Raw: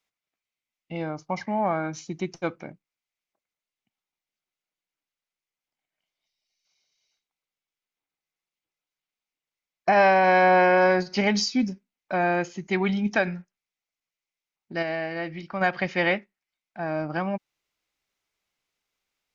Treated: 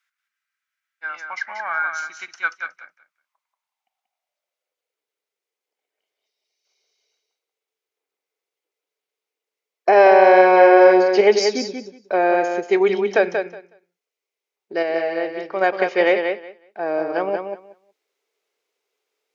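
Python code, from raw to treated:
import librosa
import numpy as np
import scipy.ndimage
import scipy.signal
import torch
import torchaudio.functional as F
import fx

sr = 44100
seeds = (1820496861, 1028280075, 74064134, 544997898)

y = fx.filter_sweep_highpass(x, sr, from_hz=1500.0, to_hz=430.0, start_s=2.57, end_s=5.0, q=6.1)
y = fx.echo_feedback(y, sr, ms=184, feedback_pct=16, wet_db=-6)
y = fx.spec_freeze(y, sr, seeds[0], at_s=0.31, hold_s=0.73)
y = y * 10.0 ** (1.5 / 20.0)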